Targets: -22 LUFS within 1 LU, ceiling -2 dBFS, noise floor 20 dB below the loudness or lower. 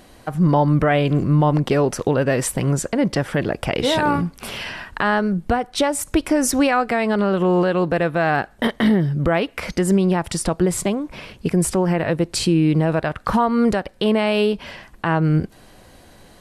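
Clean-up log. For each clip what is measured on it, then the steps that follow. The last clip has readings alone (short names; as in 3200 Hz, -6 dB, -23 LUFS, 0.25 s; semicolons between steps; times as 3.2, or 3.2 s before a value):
loudness -19.5 LUFS; peak -7.5 dBFS; loudness target -22.0 LUFS
-> gain -2.5 dB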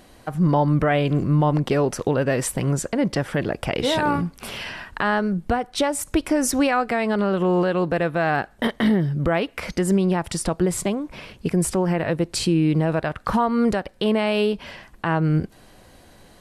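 loudness -22.0 LUFS; peak -10.0 dBFS; noise floor -51 dBFS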